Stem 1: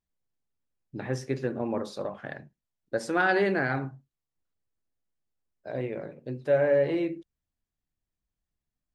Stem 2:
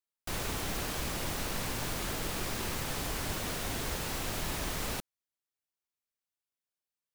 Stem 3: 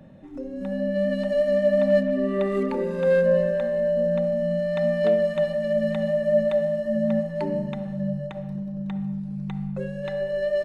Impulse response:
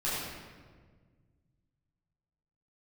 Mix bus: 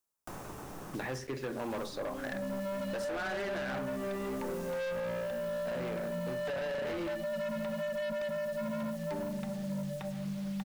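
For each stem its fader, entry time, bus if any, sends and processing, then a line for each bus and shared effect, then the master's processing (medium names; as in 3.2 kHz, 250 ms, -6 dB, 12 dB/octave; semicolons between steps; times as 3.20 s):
+2.0 dB, 0.00 s, bus A, no send, bass shelf 400 Hz -10.5 dB
-13.5 dB, 0.00 s, muted 1.00–1.70 s, no bus, send -15.5 dB, high-order bell 2.8 kHz -8 dB; auto duck -15 dB, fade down 1.10 s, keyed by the first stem
-9.0 dB, 1.70 s, bus A, send -20.5 dB, de-hum 48.2 Hz, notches 8
bus A: 0.0 dB, bit crusher 9-bit; peak limiter -22.5 dBFS, peak gain reduction 11 dB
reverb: on, RT60 1.6 s, pre-delay 9 ms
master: hard clipper -33.5 dBFS, distortion -8 dB; three bands compressed up and down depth 70%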